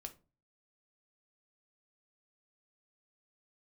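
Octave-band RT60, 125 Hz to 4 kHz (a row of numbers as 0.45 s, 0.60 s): 0.55 s, 0.45 s, 0.35 s, 0.30 s, 0.25 s, 0.20 s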